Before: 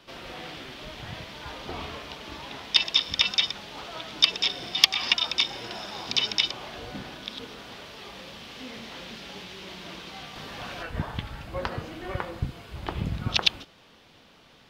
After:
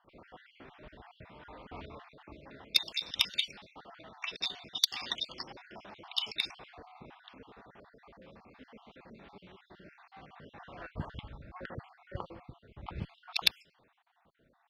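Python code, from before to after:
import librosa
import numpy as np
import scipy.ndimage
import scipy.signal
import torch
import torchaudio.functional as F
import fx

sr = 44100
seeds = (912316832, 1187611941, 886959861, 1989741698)

y = fx.spec_dropout(x, sr, seeds[0], share_pct=52)
y = fx.cheby_harmonics(y, sr, harmonics=(3,), levels_db=(-14,), full_scale_db=-3.0)
y = fx.env_lowpass(y, sr, base_hz=1300.0, full_db=-29.5)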